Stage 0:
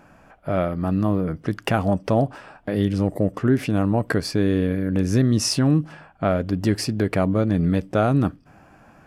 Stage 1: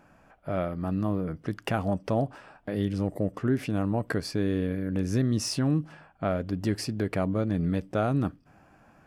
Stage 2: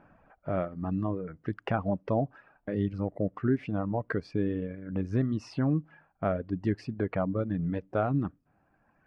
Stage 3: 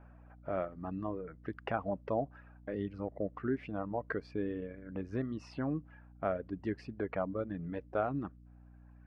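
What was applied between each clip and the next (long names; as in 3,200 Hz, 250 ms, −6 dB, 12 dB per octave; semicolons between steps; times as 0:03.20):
de-essing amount 40%; level −7 dB
reverb reduction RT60 2 s; low-pass filter 2,000 Hz 12 dB per octave
bass and treble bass −9 dB, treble −6 dB; mains hum 60 Hz, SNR 18 dB; level −3.5 dB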